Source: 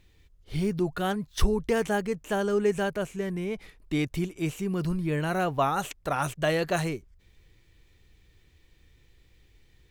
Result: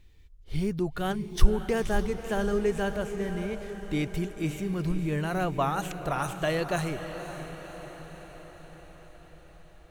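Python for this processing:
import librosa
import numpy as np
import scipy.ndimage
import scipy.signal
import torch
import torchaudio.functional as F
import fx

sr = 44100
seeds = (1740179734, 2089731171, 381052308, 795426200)

p1 = fx.low_shelf(x, sr, hz=62.0, db=10.5)
p2 = p1 + fx.echo_diffused(p1, sr, ms=549, feedback_pct=60, wet_db=-10, dry=0)
y = p2 * librosa.db_to_amplitude(-2.5)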